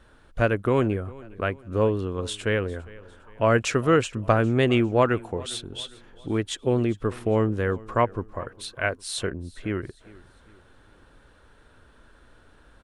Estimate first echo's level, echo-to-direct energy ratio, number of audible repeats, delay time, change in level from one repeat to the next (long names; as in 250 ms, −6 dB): −21.5 dB, −20.5 dB, 2, 404 ms, −7.5 dB